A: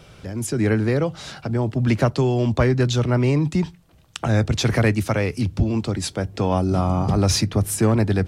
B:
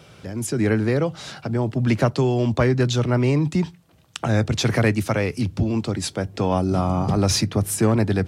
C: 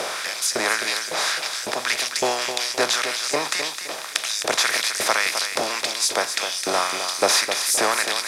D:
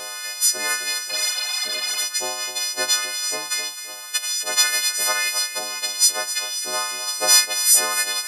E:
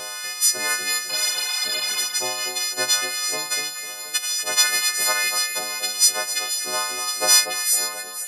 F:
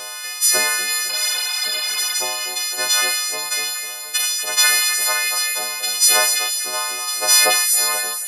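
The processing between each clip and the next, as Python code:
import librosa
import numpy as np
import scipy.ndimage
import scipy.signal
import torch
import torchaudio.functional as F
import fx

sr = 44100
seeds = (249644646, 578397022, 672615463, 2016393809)

y1 = scipy.signal.sosfilt(scipy.signal.butter(2, 89.0, 'highpass', fs=sr, output='sos'), x)
y2 = fx.bin_compress(y1, sr, power=0.4)
y2 = fx.filter_lfo_highpass(y2, sr, shape='saw_up', hz=1.8, low_hz=550.0, high_hz=6800.0, q=1.3)
y2 = fx.echo_feedback(y2, sr, ms=260, feedback_pct=30, wet_db=-8.5)
y3 = fx.freq_snap(y2, sr, grid_st=3)
y3 = fx.spec_repair(y3, sr, seeds[0], start_s=1.12, length_s=0.87, low_hz=680.0, high_hz=5700.0, source='after')
y3 = fx.upward_expand(y3, sr, threshold_db=-21.0, expansion=1.5)
y3 = F.gain(torch.from_numpy(y3), -4.5).numpy()
y4 = fx.fade_out_tail(y3, sr, length_s=1.02)
y4 = fx.peak_eq(y4, sr, hz=130.0, db=7.5, octaves=0.7)
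y4 = fx.echo_alternate(y4, sr, ms=240, hz=2000.0, feedback_pct=59, wet_db=-6.5)
y5 = fx.low_shelf(y4, sr, hz=390.0, db=-10.0)
y5 = fx.doubler(y5, sr, ms=18.0, db=-12.5)
y5 = fx.sustainer(y5, sr, db_per_s=24.0)
y5 = F.gain(torch.from_numpy(y5), 2.0).numpy()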